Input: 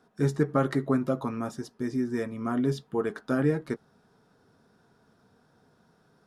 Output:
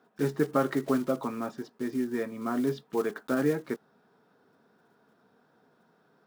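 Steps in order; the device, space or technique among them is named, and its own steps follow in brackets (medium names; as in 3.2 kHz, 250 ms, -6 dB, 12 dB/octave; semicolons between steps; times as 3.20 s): early digital voice recorder (band-pass 210–3600 Hz; block-companded coder 5-bit)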